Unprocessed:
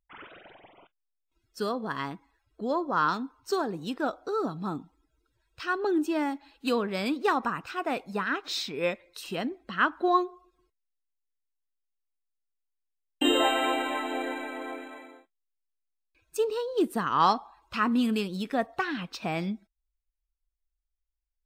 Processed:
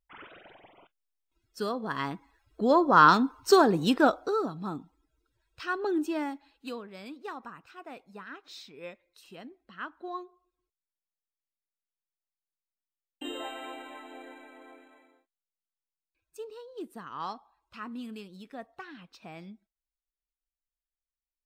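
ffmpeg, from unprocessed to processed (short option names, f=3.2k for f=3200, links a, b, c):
-af "volume=9dB,afade=t=in:st=1.81:d=1.44:silence=0.298538,afade=t=out:st=3.94:d=0.52:silence=0.266073,afade=t=out:st=6.07:d=0.76:silence=0.251189"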